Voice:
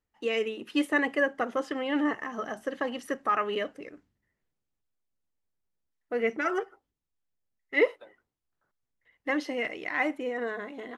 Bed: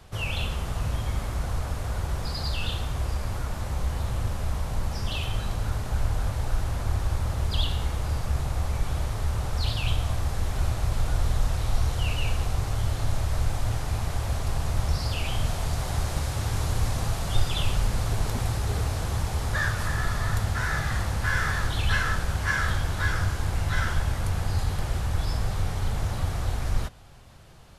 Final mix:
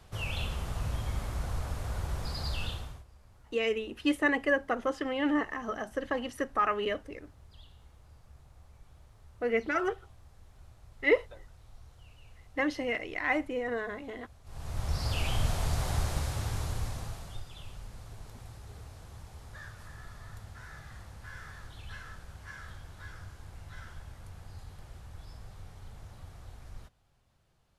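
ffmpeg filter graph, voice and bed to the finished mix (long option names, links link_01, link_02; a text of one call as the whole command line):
ffmpeg -i stem1.wav -i stem2.wav -filter_complex "[0:a]adelay=3300,volume=-1dB[link_01];[1:a]volume=20.5dB,afade=type=out:start_time=2.61:duration=0.43:silence=0.0707946,afade=type=in:start_time=14.44:duration=0.75:silence=0.0501187,afade=type=out:start_time=15.89:duration=1.54:silence=0.125893[link_02];[link_01][link_02]amix=inputs=2:normalize=0" out.wav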